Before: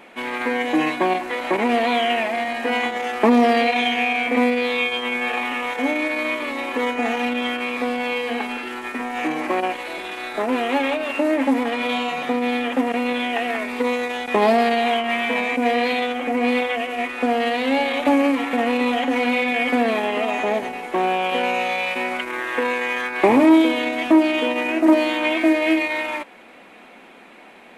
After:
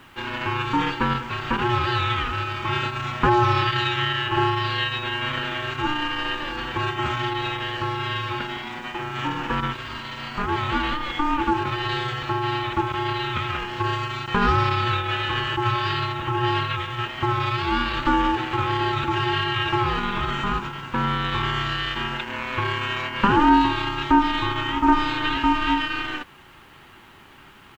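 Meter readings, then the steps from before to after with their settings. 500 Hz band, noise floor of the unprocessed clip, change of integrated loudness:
−10.0 dB, −45 dBFS, −3.0 dB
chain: downsampling to 16,000 Hz
ring modulation 600 Hz
bit-depth reduction 10 bits, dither none

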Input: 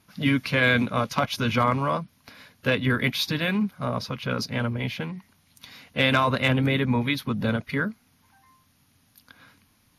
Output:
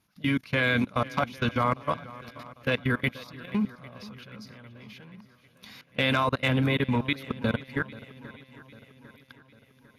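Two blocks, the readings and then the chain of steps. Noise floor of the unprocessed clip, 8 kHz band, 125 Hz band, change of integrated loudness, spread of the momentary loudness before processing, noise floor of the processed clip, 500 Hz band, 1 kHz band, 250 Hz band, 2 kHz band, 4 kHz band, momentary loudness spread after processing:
−64 dBFS, −11.5 dB, −4.0 dB, −3.0 dB, 10 LU, −62 dBFS, −3.5 dB, −3.5 dB, −3.5 dB, −4.0 dB, −5.5 dB, 21 LU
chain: output level in coarse steps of 24 dB
feedback echo with a long and a short gap by turns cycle 800 ms, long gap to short 1.5 to 1, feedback 47%, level −18.5 dB

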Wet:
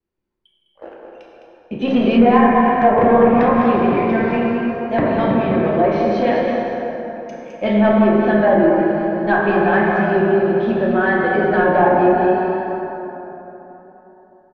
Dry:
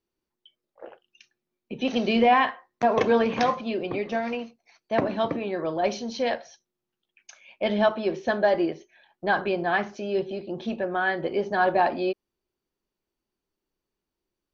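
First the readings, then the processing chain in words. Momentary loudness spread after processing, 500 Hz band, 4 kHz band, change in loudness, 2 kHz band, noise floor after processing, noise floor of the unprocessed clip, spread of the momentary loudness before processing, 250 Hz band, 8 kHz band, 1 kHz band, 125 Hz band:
13 LU, +10.0 dB, 0.0 dB, +10.0 dB, +8.0 dB, −60 dBFS, below −85 dBFS, 11 LU, +13.5 dB, can't be measured, +9.0 dB, +15.0 dB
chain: leveller curve on the samples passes 1
dense smooth reverb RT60 3.7 s, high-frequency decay 0.45×, DRR −3.5 dB
treble cut that deepens with the level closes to 1,700 Hz, closed at −10.5 dBFS
on a send: single-tap delay 207 ms −7 dB
on the sum: pitch vibrato 0.65 Hz 24 cents
in parallel at −8 dB: soft clipping −11.5 dBFS, distortion −14 dB
on the sum: bass and treble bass +6 dB, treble −13 dB
level −2 dB

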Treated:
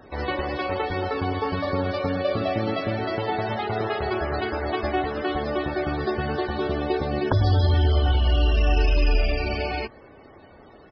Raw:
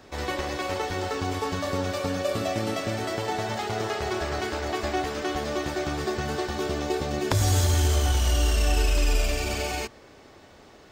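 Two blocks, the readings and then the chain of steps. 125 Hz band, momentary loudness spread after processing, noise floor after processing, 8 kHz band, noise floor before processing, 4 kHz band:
+3.0 dB, 6 LU, −49 dBFS, below −25 dB, −51 dBFS, −1.5 dB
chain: spectral peaks only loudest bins 64
downsampling to 11,025 Hz
level +3 dB

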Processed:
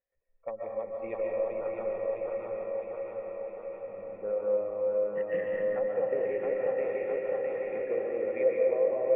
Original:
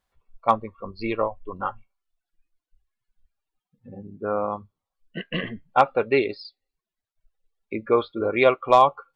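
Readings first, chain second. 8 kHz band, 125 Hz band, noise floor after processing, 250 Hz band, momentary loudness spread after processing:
can't be measured, below −10 dB, −54 dBFS, −12.0 dB, 11 LU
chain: feedback delay that plays each chunk backwards 329 ms, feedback 78%, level −3.5 dB
treble cut that deepens with the level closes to 740 Hz, closed at −13.5 dBFS
downward compressor 4 to 1, threshold −22 dBFS, peak gain reduction 8.5 dB
formant resonators in series e
on a send: feedback delay with all-pass diffusion 926 ms, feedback 54%, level −7 dB
on the sum: comb and all-pass reverb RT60 1.2 s, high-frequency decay 0.8×, pre-delay 100 ms, DRR −0.5 dB

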